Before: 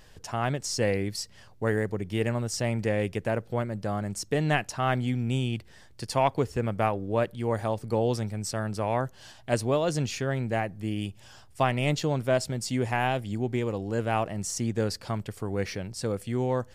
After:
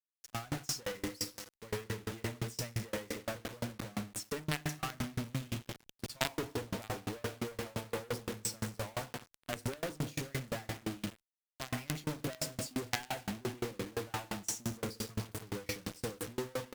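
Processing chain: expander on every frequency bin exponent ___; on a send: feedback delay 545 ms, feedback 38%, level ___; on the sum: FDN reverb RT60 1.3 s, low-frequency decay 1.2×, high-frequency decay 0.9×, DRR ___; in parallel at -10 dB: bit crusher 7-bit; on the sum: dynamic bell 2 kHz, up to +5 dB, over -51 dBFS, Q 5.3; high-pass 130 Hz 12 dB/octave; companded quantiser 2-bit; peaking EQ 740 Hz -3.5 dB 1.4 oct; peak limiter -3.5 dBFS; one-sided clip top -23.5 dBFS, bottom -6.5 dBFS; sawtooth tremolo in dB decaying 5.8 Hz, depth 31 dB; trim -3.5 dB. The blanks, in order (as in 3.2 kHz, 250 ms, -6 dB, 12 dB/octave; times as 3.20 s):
1.5, -22.5 dB, 7.5 dB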